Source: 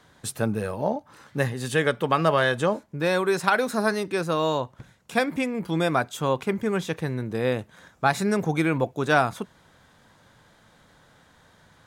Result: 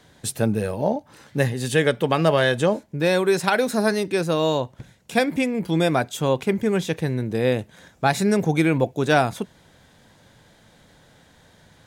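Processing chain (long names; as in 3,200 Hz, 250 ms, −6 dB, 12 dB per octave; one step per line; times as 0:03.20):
parametric band 1,200 Hz −8 dB 0.81 octaves
level +4.5 dB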